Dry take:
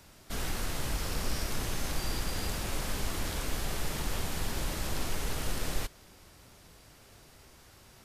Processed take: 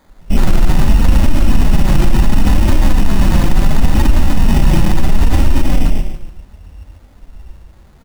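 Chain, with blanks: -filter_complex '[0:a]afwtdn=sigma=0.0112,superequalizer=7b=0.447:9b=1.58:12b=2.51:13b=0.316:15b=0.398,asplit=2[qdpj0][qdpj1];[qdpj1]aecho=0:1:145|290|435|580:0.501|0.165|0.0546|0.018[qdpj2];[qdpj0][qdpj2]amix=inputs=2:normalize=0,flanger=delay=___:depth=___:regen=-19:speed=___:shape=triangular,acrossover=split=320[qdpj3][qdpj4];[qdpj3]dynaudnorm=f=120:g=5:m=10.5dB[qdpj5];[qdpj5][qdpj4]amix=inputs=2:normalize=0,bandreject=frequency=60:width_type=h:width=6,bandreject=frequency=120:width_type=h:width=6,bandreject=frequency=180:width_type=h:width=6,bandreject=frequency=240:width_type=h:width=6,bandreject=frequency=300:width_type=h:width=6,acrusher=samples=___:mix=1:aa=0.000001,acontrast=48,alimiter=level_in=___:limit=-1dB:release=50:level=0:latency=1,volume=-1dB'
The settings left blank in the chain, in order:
3.1, 2.8, 0.71, 16, 17.5dB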